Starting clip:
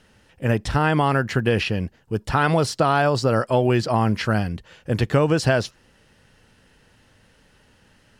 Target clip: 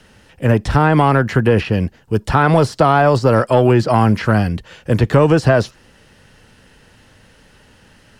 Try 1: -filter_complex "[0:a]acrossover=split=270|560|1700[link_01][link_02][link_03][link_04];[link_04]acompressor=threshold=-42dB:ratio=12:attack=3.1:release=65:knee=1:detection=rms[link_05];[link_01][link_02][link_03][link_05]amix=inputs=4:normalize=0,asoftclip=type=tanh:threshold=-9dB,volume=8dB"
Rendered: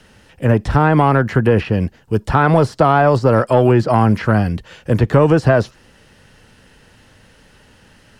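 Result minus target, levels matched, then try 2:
downward compressor: peak gain reduction +5.5 dB
-filter_complex "[0:a]acrossover=split=270|560|1700[link_01][link_02][link_03][link_04];[link_04]acompressor=threshold=-36dB:ratio=12:attack=3.1:release=65:knee=1:detection=rms[link_05];[link_01][link_02][link_03][link_05]amix=inputs=4:normalize=0,asoftclip=type=tanh:threshold=-9dB,volume=8dB"

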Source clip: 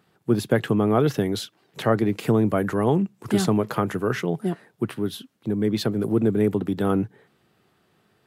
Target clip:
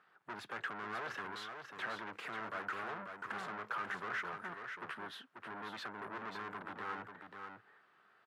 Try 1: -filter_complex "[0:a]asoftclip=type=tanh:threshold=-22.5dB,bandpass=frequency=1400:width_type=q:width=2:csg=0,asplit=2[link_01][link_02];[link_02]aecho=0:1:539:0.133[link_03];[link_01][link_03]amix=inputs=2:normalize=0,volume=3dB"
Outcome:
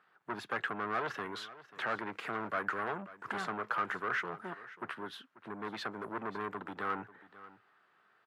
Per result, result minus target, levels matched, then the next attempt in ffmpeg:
echo-to-direct −11 dB; soft clipping: distortion −5 dB
-filter_complex "[0:a]asoftclip=type=tanh:threshold=-22.5dB,bandpass=frequency=1400:width_type=q:width=2:csg=0,asplit=2[link_01][link_02];[link_02]aecho=0:1:539:0.473[link_03];[link_01][link_03]amix=inputs=2:normalize=0,volume=3dB"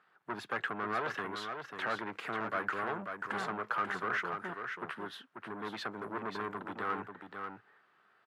soft clipping: distortion −5 dB
-filter_complex "[0:a]asoftclip=type=tanh:threshold=-33dB,bandpass=frequency=1400:width_type=q:width=2:csg=0,asplit=2[link_01][link_02];[link_02]aecho=0:1:539:0.473[link_03];[link_01][link_03]amix=inputs=2:normalize=0,volume=3dB"

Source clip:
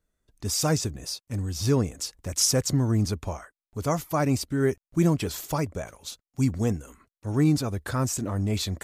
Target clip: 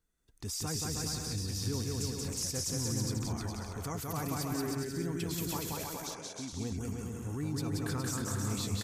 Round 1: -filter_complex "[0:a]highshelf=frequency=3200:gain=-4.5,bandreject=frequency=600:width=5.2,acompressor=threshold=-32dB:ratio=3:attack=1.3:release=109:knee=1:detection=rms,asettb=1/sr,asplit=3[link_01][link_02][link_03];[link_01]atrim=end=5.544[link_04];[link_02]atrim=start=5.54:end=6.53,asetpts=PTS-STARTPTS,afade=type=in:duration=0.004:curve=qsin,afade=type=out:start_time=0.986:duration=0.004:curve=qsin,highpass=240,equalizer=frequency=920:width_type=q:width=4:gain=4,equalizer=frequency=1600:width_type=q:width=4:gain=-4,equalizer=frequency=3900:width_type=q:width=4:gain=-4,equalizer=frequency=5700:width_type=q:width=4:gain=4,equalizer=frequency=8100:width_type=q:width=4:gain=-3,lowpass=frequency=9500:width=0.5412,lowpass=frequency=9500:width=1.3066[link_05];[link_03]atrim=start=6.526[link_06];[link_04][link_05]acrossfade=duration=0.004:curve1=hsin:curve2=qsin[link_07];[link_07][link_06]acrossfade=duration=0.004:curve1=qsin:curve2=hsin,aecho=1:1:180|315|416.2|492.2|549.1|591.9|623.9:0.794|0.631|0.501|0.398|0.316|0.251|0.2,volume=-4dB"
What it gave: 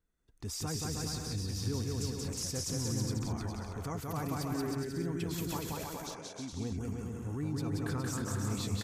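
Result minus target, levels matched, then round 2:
8,000 Hz band −2.5 dB
-filter_complex "[0:a]highshelf=frequency=3200:gain=4,bandreject=frequency=600:width=5.2,acompressor=threshold=-32dB:ratio=3:attack=1.3:release=109:knee=1:detection=rms,asettb=1/sr,asplit=3[link_01][link_02][link_03];[link_01]atrim=end=5.544[link_04];[link_02]atrim=start=5.54:end=6.53,asetpts=PTS-STARTPTS,afade=type=in:duration=0.004:curve=qsin,afade=type=out:start_time=0.986:duration=0.004:curve=qsin,highpass=240,equalizer=frequency=920:width_type=q:width=4:gain=4,equalizer=frequency=1600:width_type=q:width=4:gain=-4,equalizer=frequency=3900:width_type=q:width=4:gain=-4,equalizer=frequency=5700:width_type=q:width=4:gain=4,equalizer=frequency=8100:width_type=q:width=4:gain=-3,lowpass=frequency=9500:width=0.5412,lowpass=frequency=9500:width=1.3066[link_05];[link_03]atrim=start=6.526[link_06];[link_04][link_05]acrossfade=duration=0.004:curve1=hsin:curve2=qsin[link_07];[link_07][link_06]acrossfade=duration=0.004:curve1=qsin:curve2=hsin,aecho=1:1:180|315|416.2|492.2|549.1|591.9|623.9:0.794|0.631|0.501|0.398|0.316|0.251|0.2,volume=-4dB"

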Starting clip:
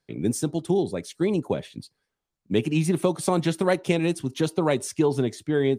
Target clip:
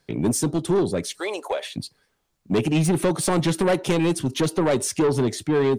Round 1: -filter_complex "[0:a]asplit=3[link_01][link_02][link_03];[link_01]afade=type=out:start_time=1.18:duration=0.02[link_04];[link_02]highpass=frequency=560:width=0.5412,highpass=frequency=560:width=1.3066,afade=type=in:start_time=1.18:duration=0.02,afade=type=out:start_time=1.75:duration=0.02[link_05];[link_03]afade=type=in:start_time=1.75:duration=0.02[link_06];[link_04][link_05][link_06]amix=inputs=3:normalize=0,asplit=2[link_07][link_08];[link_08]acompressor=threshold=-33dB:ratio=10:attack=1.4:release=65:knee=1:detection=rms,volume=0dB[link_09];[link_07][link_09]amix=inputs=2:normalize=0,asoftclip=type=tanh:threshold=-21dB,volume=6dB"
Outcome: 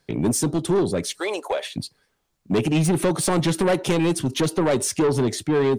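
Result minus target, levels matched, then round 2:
downward compressor: peak gain reduction −7.5 dB
-filter_complex "[0:a]asplit=3[link_01][link_02][link_03];[link_01]afade=type=out:start_time=1.18:duration=0.02[link_04];[link_02]highpass=frequency=560:width=0.5412,highpass=frequency=560:width=1.3066,afade=type=in:start_time=1.18:duration=0.02,afade=type=out:start_time=1.75:duration=0.02[link_05];[link_03]afade=type=in:start_time=1.75:duration=0.02[link_06];[link_04][link_05][link_06]amix=inputs=3:normalize=0,asplit=2[link_07][link_08];[link_08]acompressor=threshold=-41.5dB:ratio=10:attack=1.4:release=65:knee=1:detection=rms,volume=0dB[link_09];[link_07][link_09]amix=inputs=2:normalize=0,asoftclip=type=tanh:threshold=-21dB,volume=6dB"

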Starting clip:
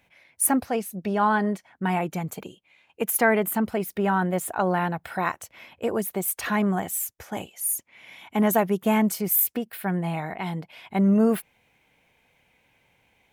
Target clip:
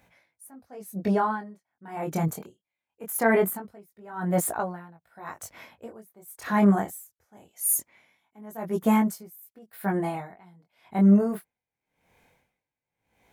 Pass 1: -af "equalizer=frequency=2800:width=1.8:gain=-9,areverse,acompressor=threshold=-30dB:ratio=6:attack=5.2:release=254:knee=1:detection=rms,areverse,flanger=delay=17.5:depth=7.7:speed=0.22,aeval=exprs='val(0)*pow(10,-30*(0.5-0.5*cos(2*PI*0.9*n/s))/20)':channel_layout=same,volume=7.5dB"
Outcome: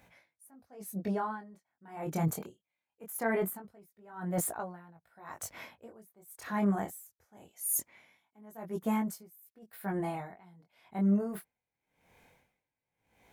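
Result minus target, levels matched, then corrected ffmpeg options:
downward compressor: peak gain reduction +9.5 dB
-af "equalizer=frequency=2800:width=1.8:gain=-9,areverse,acompressor=threshold=-18.5dB:ratio=6:attack=5.2:release=254:knee=1:detection=rms,areverse,flanger=delay=17.5:depth=7.7:speed=0.22,aeval=exprs='val(0)*pow(10,-30*(0.5-0.5*cos(2*PI*0.9*n/s))/20)':channel_layout=same,volume=7.5dB"

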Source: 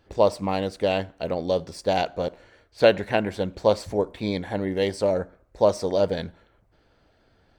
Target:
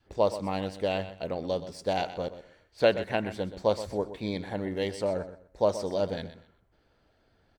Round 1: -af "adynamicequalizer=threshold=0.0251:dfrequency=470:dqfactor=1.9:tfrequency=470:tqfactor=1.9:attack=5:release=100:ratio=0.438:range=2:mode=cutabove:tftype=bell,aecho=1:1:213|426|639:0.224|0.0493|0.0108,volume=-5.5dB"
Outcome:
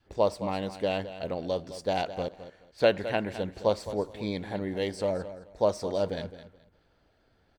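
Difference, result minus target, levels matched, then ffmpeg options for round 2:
echo 88 ms late
-af "adynamicequalizer=threshold=0.0251:dfrequency=470:dqfactor=1.9:tfrequency=470:tqfactor=1.9:attack=5:release=100:ratio=0.438:range=2:mode=cutabove:tftype=bell,aecho=1:1:125|250|375:0.224|0.0493|0.0108,volume=-5.5dB"

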